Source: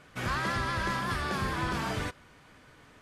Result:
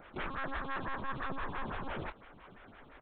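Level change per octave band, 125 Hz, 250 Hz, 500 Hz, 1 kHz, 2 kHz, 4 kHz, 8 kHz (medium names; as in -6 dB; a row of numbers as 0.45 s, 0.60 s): -12.0 dB, -8.0 dB, -6.0 dB, -6.5 dB, -8.0 dB, -13.0 dB, under -35 dB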